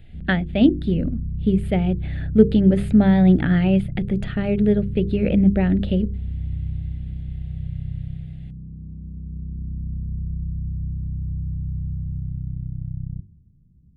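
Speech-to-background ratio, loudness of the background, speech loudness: 11.0 dB, -30.5 LUFS, -19.5 LUFS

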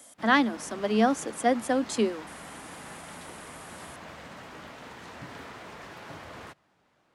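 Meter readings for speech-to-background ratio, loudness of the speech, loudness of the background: 18.0 dB, -26.0 LUFS, -44.0 LUFS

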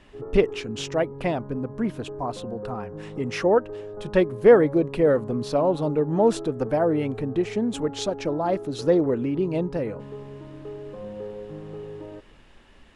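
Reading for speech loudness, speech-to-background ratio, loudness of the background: -24.0 LUFS, 13.5 dB, -37.5 LUFS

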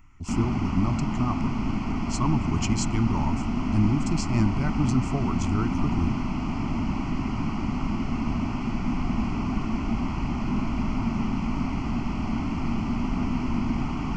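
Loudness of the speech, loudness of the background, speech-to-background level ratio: -28.5 LUFS, -28.5 LUFS, 0.0 dB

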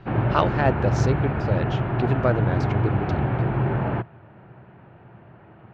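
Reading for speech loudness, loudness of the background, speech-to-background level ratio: -27.0 LUFS, -24.0 LUFS, -3.0 dB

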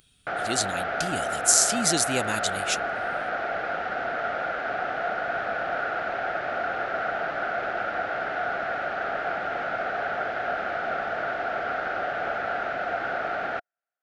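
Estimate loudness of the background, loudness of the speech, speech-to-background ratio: -28.5 LUFS, -24.5 LUFS, 4.0 dB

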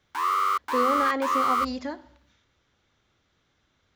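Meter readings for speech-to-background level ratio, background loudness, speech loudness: -5.0 dB, -25.0 LUFS, -30.0 LUFS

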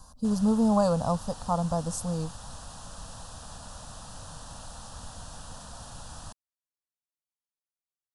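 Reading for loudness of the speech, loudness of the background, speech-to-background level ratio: -27.0 LUFS, -44.0 LUFS, 17.0 dB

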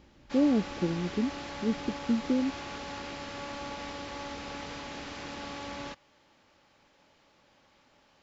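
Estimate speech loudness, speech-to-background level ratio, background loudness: -30.5 LUFS, 9.5 dB, -40.0 LUFS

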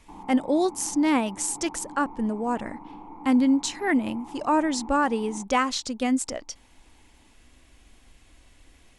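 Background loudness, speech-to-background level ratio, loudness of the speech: -43.5 LUFS, 18.0 dB, -25.5 LUFS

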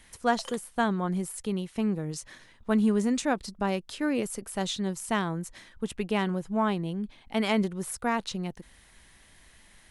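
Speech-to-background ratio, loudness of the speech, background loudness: 17.5 dB, -29.5 LUFS, -47.0 LUFS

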